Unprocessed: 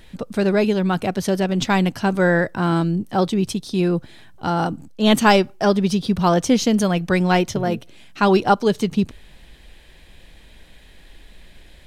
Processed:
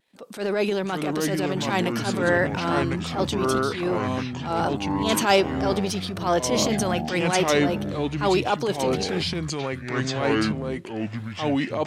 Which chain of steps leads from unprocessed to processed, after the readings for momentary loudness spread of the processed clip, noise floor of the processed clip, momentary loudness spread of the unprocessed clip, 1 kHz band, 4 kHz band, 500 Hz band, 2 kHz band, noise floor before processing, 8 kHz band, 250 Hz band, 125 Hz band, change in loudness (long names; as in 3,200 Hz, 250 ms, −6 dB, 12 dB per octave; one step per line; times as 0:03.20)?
8 LU, −36 dBFS, 8 LU, −4.0 dB, −0.5 dB, −2.5 dB, −2.0 dB, −47 dBFS, +1.5 dB, −5.5 dB, −4.5 dB, −4.5 dB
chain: noise gate −42 dBFS, range −22 dB
high-pass filter 340 Hz 12 dB per octave
transient designer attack −11 dB, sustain +4 dB
pitch vibrato 2.6 Hz 54 cents
delay with pitch and tempo change per echo 430 ms, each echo −5 semitones, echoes 3
level −1.5 dB